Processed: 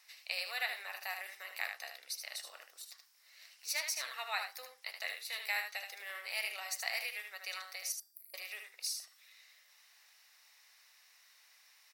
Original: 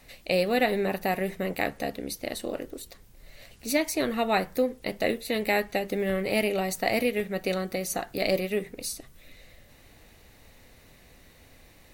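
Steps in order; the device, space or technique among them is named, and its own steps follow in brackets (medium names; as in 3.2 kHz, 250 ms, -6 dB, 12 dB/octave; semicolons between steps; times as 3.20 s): headphones lying on a table (high-pass 1 kHz 24 dB/octave; peaking EQ 5.3 kHz +11 dB 0.32 oct); 7.92–8.34 s: inverse Chebyshev band-stop 480–6100 Hz, stop band 40 dB; delay 76 ms -6.5 dB; de-hum 396 Hz, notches 21; trim -7.5 dB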